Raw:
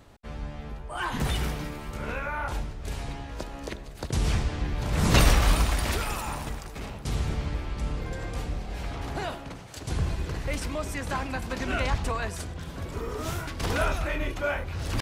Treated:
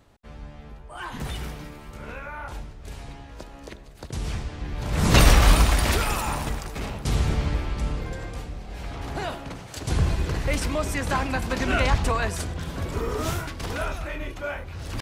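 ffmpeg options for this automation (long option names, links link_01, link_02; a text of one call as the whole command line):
ffmpeg -i in.wav -af "volume=15dB,afade=type=in:start_time=4.58:duration=0.86:silence=0.316228,afade=type=out:start_time=7.53:duration=0.99:silence=0.334965,afade=type=in:start_time=8.52:duration=1.43:silence=0.334965,afade=type=out:start_time=13.23:duration=0.43:silence=0.375837" out.wav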